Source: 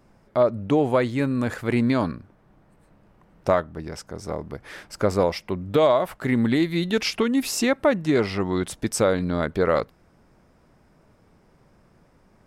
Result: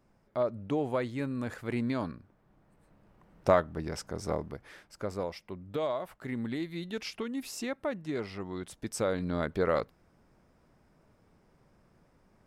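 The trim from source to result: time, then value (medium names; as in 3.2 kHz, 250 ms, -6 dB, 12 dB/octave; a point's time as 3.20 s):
2.15 s -10.5 dB
3.75 s -2 dB
4.35 s -2 dB
4.83 s -14 dB
8.62 s -14 dB
9.35 s -7 dB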